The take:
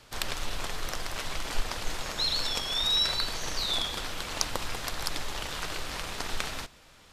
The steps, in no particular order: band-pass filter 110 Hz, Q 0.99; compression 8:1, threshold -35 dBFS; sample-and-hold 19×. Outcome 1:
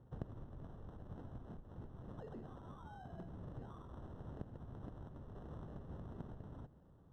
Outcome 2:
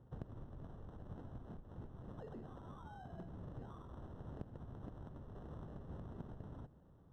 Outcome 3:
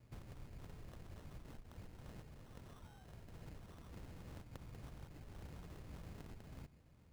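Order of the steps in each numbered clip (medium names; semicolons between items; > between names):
compression > sample-and-hold > band-pass filter; sample-and-hold > compression > band-pass filter; compression > band-pass filter > sample-and-hold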